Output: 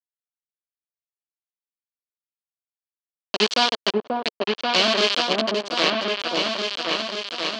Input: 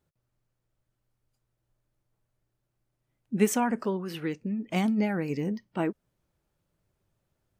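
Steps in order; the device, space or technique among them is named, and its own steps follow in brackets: hand-held game console (bit-crush 4-bit; speaker cabinet 450–5400 Hz, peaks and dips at 470 Hz -3 dB, 820 Hz -8 dB, 1400 Hz -4 dB, 2000 Hz -6 dB, 3100 Hz +8 dB, 4400 Hz +8 dB); repeats that get brighter 0.536 s, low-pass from 750 Hz, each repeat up 2 oct, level 0 dB; gain +8 dB

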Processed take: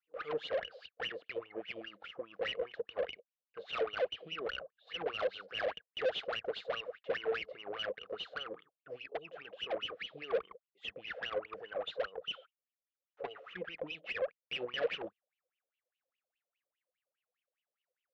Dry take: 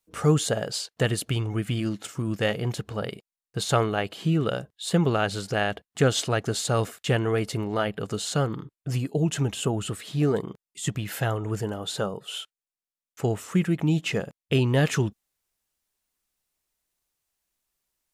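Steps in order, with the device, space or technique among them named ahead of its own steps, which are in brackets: wah-wah guitar rig (wah 4.9 Hz 510–3000 Hz, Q 15; tube stage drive 45 dB, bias 0.55; speaker cabinet 84–4000 Hz, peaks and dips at 91 Hz -9 dB, 130 Hz -9 dB, 240 Hz -5 dB, 480 Hz +9 dB, 920 Hz -9 dB); 12.38–13.49 comb 7.1 ms, depth 53%; gain +12 dB

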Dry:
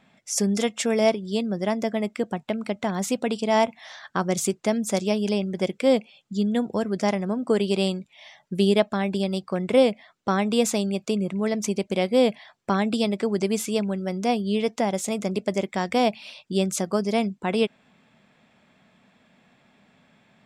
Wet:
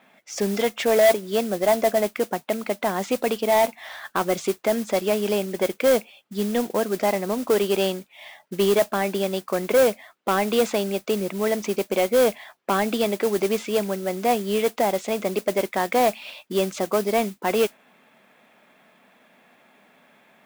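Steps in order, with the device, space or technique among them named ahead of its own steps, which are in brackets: 0.79–2.07 dynamic EQ 710 Hz, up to +7 dB, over -35 dBFS, Q 1.8; carbon microphone (BPF 330–3100 Hz; soft clip -18 dBFS, distortion -11 dB; modulation noise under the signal 15 dB); gain +6 dB

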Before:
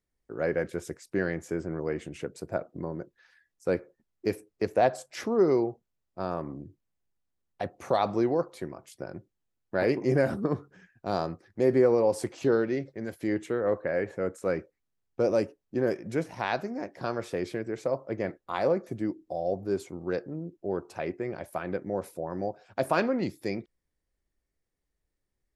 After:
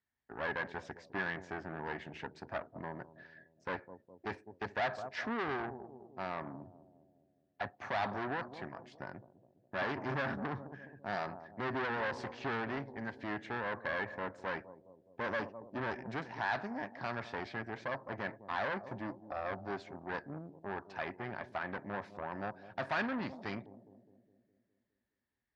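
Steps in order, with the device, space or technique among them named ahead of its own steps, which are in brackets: analogue delay pedal into a guitar amplifier (analogue delay 0.206 s, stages 1024, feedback 55%, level -16 dB; tube stage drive 30 dB, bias 0.65; speaker cabinet 100–4600 Hz, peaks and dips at 170 Hz -7 dB, 340 Hz -9 dB, 490 Hz -10 dB, 900 Hz +5 dB, 1700 Hz +9 dB)

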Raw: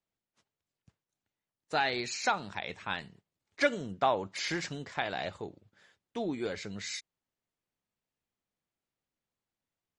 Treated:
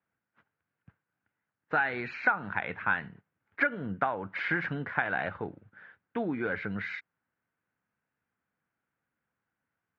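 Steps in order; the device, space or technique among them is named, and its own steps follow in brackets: 2.14–3.71 treble ducked by the level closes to 3000 Hz, closed at -28 dBFS; bass amplifier (compressor 6:1, threshold -33 dBFS, peak gain reduction 12 dB; speaker cabinet 79–2300 Hz, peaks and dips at 380 Hz -5 dB, 610 Hz -4 dB, 1500 Hz +10 dB); gain +7 dB

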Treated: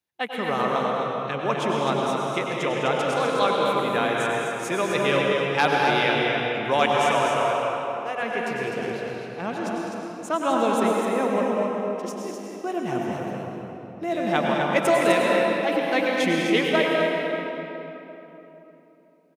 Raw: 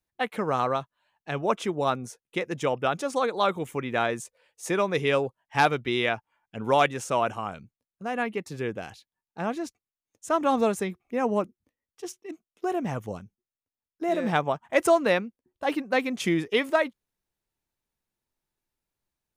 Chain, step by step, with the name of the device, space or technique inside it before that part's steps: 7.15–8.23 steep high-pass 320 Hz 48 dB/oct; stadium PA (HPF 120 Hz; bell 3000 Hz +4 dB 1.3 oct; loudspeakers at several distances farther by 70 m -11 dB, 87 m -6 dB; reverb RT60 3.5 s, pre-delay 90 ms, DRR -1.5 dB); gain -1.5 dB

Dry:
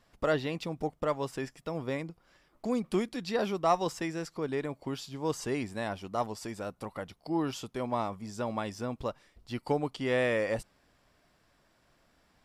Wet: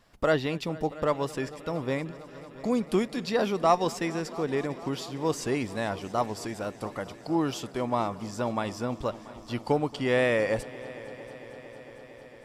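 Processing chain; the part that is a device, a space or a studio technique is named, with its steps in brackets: multi-head tape echo (multi-head echo 0.227 s, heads all three, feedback 73%, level -23 dB; wow and flutter 22 cents); gain +4 dB

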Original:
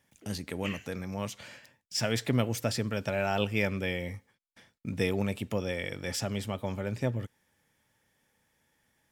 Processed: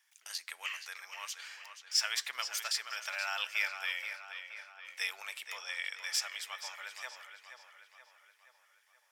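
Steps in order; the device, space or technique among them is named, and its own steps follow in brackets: 5.55–6 LPF 11000 Hz 24 dB/oct; tape echo 0.476 s, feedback 58%, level -7.5 dB, low-pass 4200 Hz; headphones lying on a table (HPF 1100 Hz 24 dB/oct; bell 5300 Hz +4 dB 0.59 oct)

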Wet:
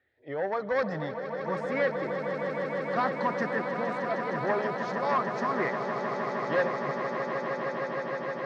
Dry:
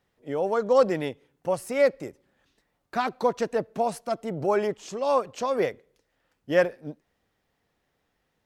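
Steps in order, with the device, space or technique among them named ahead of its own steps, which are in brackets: barber-pole phaser into a guitar amplifier (endless phaser +0.49 Hz; soft clip -22.5 dBFS, distortion -10 dB; speaker cabinet 78–4600 Hz, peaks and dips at 450 Hz -4 dB, 1200 Hz +5 dB, 1800 Hz +10 dB, 2900 Hz -8 dB); swelling echo 0.155 s, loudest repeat 8, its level -10 dB

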